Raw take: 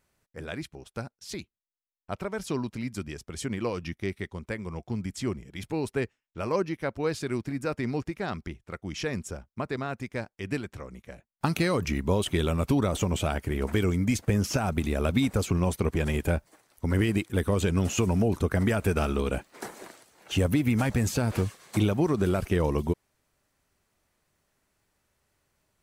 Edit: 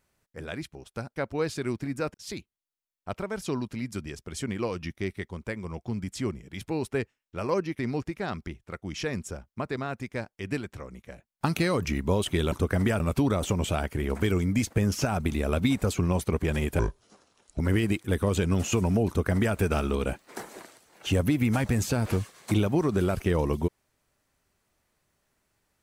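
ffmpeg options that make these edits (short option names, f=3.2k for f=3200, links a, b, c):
-filter_complex "[0:a]asplit=8[a][b][c][d][e][f][g][h];[a]atrim=end=1.162[i];[b]atrim=start=6.808:end=7.792[j];[c]atrim=start=1.158:end=6.812[k];[d]atrim=start=7.788:end=12.522[l];[e]atrim=start=18.328:end=18.812[m];[f]atrim=start=12.518:end=16.314[n];[g]atrim=start=16.31:end=16.85,asetpts=PTS-STARTPTS,asetrate=29547,aresample=44100,atrim=end_sample=35543,asetpts=PTS-STARTPTS[o];[h]atrim=start=16.846[p];[i][j]acrossfade=d=0.004:c1=hsin:c2=hsin[q];[q][k]acrossfade=d=0.004:c1=hsin:c2=hsin[r];[r][l]acrossfade=d=0.004:c1=hsin:c2=hsin[s];[s][m]acrossfade=d=0.004:c1=hsin:c2=hsin[t];[t][n]acrossfade=d=0.004:c1=hsin:c2=hsin[u];[u][o]acrossfade=d=0.004:c1=hsin:c2=hsin[v];[v][p]acrossfade=d=0.004:c1=hsin:c2=hsin"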